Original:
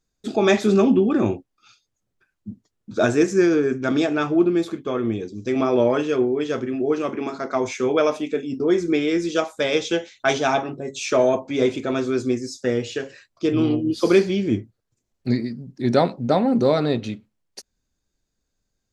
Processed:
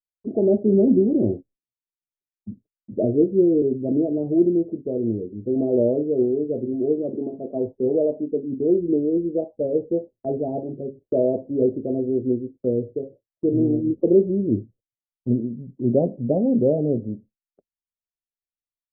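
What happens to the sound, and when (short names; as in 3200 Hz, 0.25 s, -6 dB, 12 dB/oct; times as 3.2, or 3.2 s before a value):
2.98–3.62 steep low-pass 730 Hz
whole clip: steep low-pass 610 Hz 48 dB/oct; expander -40 dBFS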